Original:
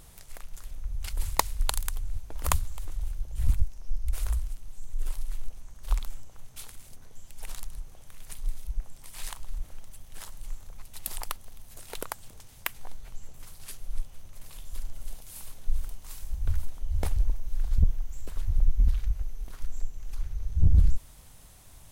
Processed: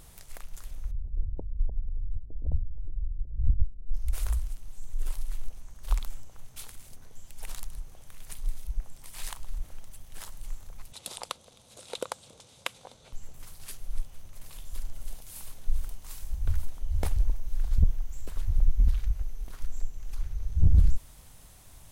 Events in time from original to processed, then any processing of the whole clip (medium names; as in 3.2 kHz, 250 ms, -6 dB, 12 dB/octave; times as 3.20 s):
0.91–3.94 s: Gaussian low-pass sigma 21 samples
10.92–13.13 s: cabinet simulation 130–9600 Hz, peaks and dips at 520 Hz +9 dB, 1.8 kHz -7 dB, 3.7 kHz +7 dB